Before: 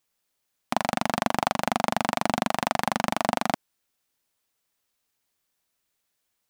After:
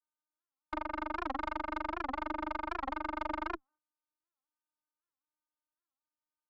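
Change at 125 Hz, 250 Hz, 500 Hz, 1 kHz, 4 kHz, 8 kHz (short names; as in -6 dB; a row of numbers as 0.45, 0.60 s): -17.5 dB, -11.5 dB, -13.5 dB, -10.5 dB, -19.5 dB, under -30 dB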